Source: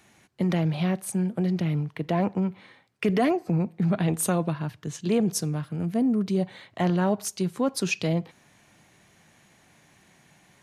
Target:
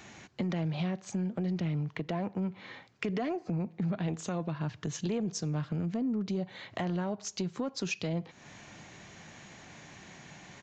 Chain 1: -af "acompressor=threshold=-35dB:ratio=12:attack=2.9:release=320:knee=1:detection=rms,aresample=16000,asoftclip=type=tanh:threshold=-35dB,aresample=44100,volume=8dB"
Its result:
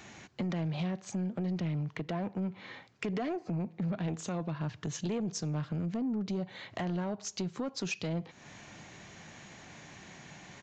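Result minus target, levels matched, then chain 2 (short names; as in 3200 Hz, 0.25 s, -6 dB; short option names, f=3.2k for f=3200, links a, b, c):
soft clip: distortion +9 dB
-af "acompressor=threshold=-35dB:ratio=12:attack=2.9:release=320:knee=1:detection=rms,aresample=16000,asoftclip=type=tanh:threshold=-29dB,aresample=44100,volume=8dB"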